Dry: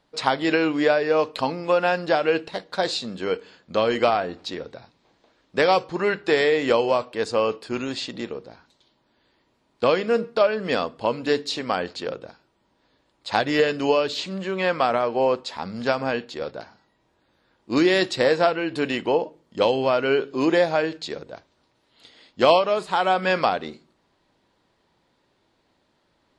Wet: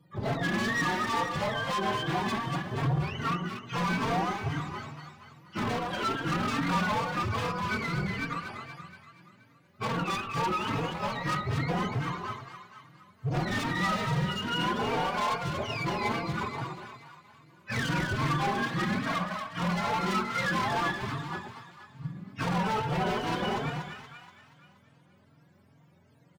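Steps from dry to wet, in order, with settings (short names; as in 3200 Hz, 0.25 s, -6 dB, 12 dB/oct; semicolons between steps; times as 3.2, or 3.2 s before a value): spectrum mirrored in octaves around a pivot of 740 Hz; bell 170 Hz +6 dB 0.28 oct; in parallel at -0.5 dB: compressor, threshold -34 dBFS, peak gain reduction 20.5 dB; on the sum: hard clip -25.5 dBFS, distortion -4 dB; on a send: split-band echo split 1000 Hz, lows 0.114 s, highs 0.238 s, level -5 dB; on the sum: endless flanger 3.8 ms +2.4 Hz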